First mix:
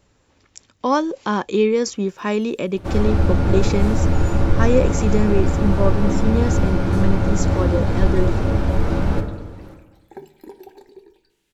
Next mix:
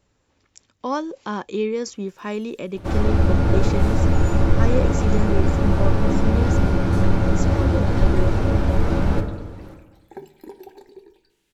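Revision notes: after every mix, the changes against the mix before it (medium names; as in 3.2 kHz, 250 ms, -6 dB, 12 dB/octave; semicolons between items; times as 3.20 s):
speech -6.5 dB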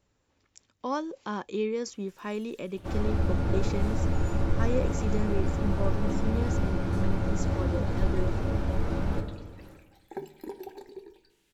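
speech -6.0 dB; first sound -9.5 dB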